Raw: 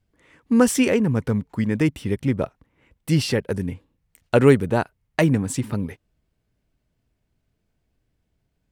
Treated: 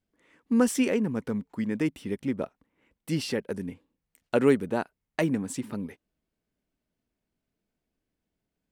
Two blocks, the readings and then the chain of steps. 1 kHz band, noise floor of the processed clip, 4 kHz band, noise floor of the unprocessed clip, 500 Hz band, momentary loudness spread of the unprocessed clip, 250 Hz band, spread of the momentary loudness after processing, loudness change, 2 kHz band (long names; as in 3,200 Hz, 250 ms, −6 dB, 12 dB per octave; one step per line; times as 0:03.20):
−7.5 dB, −85 dBFS, −7.5 dB, −74 dBFS, −6.5 dB, 12 LU, −6.0 dB, 13 LU, −7.0 dB, −7.5 dB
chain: low shelf with overshoot 160 Hz −7.5 dB, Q 1.5
level −7.5 dB